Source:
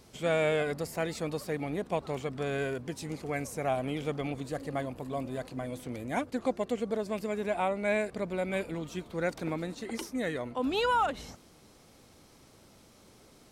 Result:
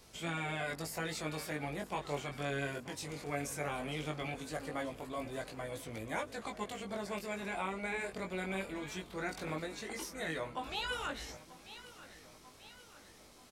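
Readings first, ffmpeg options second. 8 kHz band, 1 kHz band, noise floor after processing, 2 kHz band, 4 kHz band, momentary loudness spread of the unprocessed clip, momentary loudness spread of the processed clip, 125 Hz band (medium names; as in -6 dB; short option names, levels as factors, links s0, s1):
+0.5 dB, -7.0 dB, -58 dBFS, -2.5 dB, -1.5 dB, 9 LU, 15 LU, -5.5 dB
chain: -filter_complex "[0:a]afftfilt=real='re*lt(hypot(re,im),0.224)':imag='im*lt(hypot(re,im),0.224)':win_size=1024:overlap=0.75,equalizer=f=200:w=0.35:g=-8,aecho=1:1:938|1876|2814|3752|4690:0.141|0.0763|0.0412|0.0222|0.012,acrossover=split=560|910[s0][s1][s2];[s2]alimiter=level_in=2.66:limit=0.0631:level=0:latency=1:release=20,volume=0.376[s3];[s0][s1][s3]amix=inputs=3:normalize=0,flanger=delay=18:depth=3.2:speed=0.18,volume=1.58"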